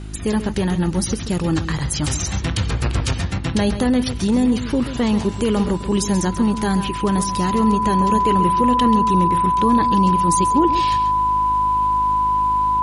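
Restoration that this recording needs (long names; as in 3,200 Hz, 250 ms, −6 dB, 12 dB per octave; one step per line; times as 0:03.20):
hum removal 52 Hz, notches 7
notch filter 1,000 Hz, Q 30
echo removal 135 ms −11.5 dB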